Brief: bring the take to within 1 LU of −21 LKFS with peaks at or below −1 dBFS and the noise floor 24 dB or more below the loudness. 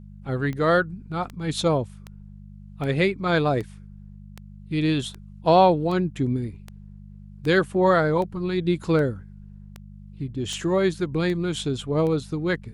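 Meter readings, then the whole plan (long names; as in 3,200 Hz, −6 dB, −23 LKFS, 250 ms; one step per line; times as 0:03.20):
number of clicks 16; mains hum 50 Hz; hum harmonics up to 200 Hz; level of the hum −41 dBFS; integrated loudness −23.5 LKFS; sample peak −5.5 dBFS; target loudness −21.0 LKFS
→ click removal
hum removal 50 Hz, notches 4
level +2.5 dB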